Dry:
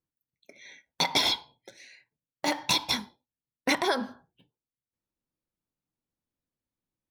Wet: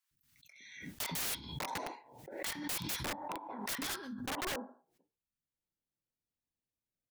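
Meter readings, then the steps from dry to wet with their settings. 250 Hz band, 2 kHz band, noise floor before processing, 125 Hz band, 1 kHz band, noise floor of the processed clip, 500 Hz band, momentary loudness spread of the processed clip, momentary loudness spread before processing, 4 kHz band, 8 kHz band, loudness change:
−8.0 dB, −9.0 dB, below −85 dBFS, −1.0 dB, −9.0 dB, below −85 dBFS, −10.0 dB, 14 LU, 9 LU, −13.5 dB, −4.0 dB, −11.5 dB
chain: three-band delay without the direct sound highs, lows, mids 110/600 ms, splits 260/1,100 Hz
wrap-around overflow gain 26 dB
background raised ahead of every attack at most 58 dB per second
level −5.5 dB

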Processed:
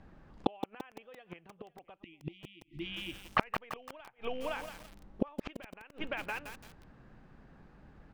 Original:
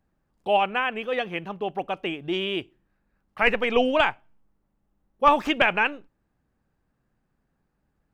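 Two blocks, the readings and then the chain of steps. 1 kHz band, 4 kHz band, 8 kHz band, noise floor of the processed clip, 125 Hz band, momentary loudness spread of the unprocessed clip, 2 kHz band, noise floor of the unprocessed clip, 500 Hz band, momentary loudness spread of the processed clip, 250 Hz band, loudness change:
−15.5 dB, −14.5 dB, can't be measured, −66 dBFS, −4.5 dB, 10 LU, −16.5 dB, −74 dBFS, −16.0 dB, 22 LU, −10.5 dB, −16.0 dB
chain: loose part that buzzes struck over −33 dBFS, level −29 dBFS
low-pass filter 3,800 Hz 12 dB per octave
dynamic equaliser 240 Hz, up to −5 dB, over −41 dBFS, Q 1.6
downward compressor 8 to 1, threshold −28 dBFS, peak gain reduction 15.5 dB
time-frequency box erased 0:01.98–0:02.80, 360–1,900 Hz
single-tap delay 514 ms −23 dB
gate with flip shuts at −30 dBFS, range −38 dB
feedback echo at a low word length 170 ms, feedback 55%, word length 10 bits, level −7 dB
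level +16.5 dB

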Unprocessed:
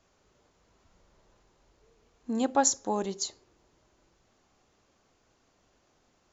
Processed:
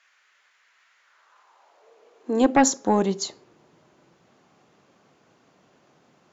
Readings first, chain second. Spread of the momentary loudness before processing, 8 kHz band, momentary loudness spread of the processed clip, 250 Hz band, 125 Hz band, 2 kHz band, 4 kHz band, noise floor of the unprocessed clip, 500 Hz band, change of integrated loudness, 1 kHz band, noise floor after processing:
11 LU, can't be measured, 12 LU, +10.0 dB, +11.0 dB, +11.5 dB, +4.0 dB, −70 dBFS, +8.5 dB, +7.0 dB, +6.5 dB, −64 dBFS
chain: bass and treble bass −4 dB, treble −8 dB
high-pass filter sweep 1,800 Hz → 150 Hz, 0:00.99–0:03.03
sine wavefolder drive 5 dB, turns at −9.5 dBFS

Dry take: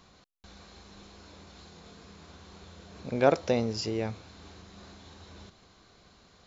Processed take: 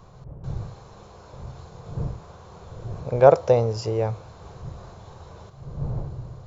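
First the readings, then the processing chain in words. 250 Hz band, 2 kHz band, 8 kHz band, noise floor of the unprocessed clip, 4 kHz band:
0.0 dB, +0.5 dB, can't be measured, −60 dBFS, −3.0 dB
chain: wind on the microphone 140 Hz −42 dBFS
graphic EQ with 10 bands 125 Hz +11 dB, 250 Hz −11 dB, 500 Hz +9 dB, 1,000 Hz +7 dB, 2,000 Hz −5 dB, 4,000 Hz −6 dB
level +2 dB

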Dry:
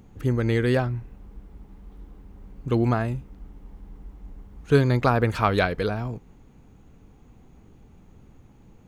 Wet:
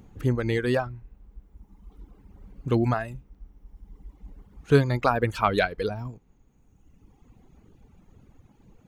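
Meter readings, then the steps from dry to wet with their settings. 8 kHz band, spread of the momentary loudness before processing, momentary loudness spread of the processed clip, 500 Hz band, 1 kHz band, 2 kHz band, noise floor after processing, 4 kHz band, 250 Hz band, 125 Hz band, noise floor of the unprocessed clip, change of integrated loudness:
can't be measured, 14 LU, 16 LU, −1.0 dB, −0.5 dB, −1.0 dB, −61 dBFS, −1.0 dB, −2.5 dB, −3.5 dB, −53 dBFS, −1.5 dB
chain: reverb reduction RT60 1.7 s

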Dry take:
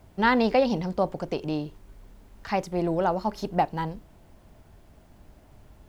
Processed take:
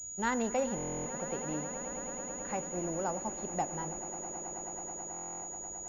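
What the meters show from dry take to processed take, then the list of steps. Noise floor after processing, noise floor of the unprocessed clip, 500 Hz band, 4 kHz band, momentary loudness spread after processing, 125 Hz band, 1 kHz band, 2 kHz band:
−43 dBFS, −55 dBFS, −9.5 dB, −14.5 dB, 7 LU, −10.0 dB, −9.5 dB, −10.0 dB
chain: tuned comb filter 77 Hz, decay 1.7 s, harmonics all, mix 50%
on a send: echo that builds up and dies away 108 ms, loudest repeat 8, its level −17 dB
on the sum: buffer that repeats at 0:00.76/0:05.12, samples 1,024, times 12
switching amplifier with a slow clock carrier 6,800 Hz
level −5 dB

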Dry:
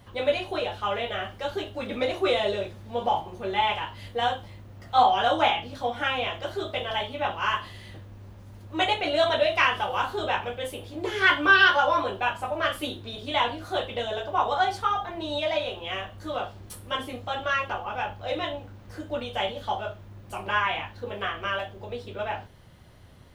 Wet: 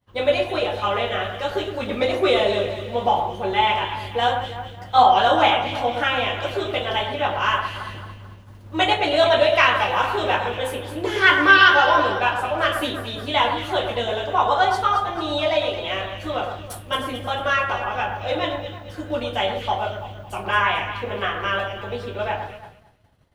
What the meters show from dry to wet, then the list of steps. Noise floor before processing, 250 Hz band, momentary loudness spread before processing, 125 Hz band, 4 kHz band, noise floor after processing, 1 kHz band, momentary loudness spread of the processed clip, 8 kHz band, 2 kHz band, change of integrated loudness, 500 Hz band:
−47 dBFS, +6.0 dB, 14 LU, +7.0 dB, +5.5 dB, −42 dBFS, +6.0 dB, 13 LU, +5.5 dB, +5.5 dB, +6.0 dB, +6.0 dB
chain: delay that swaps between a low-pass and a high-pass 111 ms, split 2,000 Hz, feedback 67%, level −6 dB
downward expander −38 dBFS
level +5 dB

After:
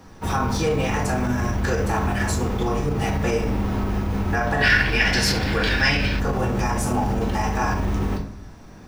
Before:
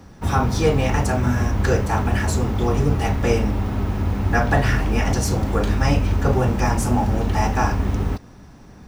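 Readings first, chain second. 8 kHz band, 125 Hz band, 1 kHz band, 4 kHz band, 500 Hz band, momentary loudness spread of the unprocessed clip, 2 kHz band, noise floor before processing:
−0.5 dB, −4.5 dB, −1.5 dB, +6.5 dB, −2.0 dB, 4 LU, +5.5 dB, −44 dBFS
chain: rectangular room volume 67 cubic metres, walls mixed, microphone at 0.61 metres
brickwall limiter −11 dBFS, peak gain reduction 9 dB
gain on a spectral selection 0:04.62–0:06.19, 1,400–5,600 Hz +12 dB
low-shelf EQ 210 Hz −6 dB

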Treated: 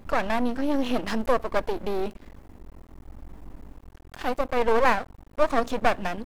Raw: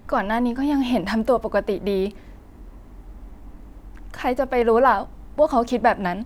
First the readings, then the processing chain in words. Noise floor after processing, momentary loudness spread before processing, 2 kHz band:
−52 dBFS, 8 LU, −2.5 dB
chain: half-wave rectification

